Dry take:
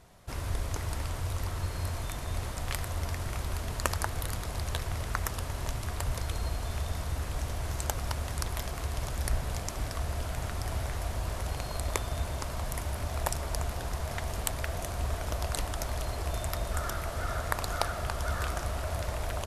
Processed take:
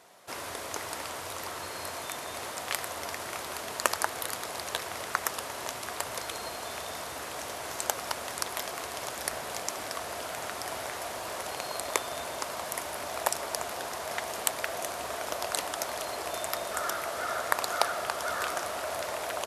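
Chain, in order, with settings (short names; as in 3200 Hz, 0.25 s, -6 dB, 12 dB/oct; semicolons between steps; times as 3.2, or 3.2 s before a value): HPF 390 Hz 12 dB/oct; gain +4.5 dB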